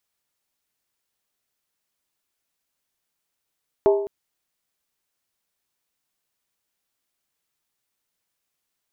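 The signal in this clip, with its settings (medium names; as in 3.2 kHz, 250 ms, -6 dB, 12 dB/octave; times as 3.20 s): skin hit length 0.21 s, lowest mode 402 Hz, decay 0.71 s, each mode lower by 6.5 dB, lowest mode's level -11.5 dB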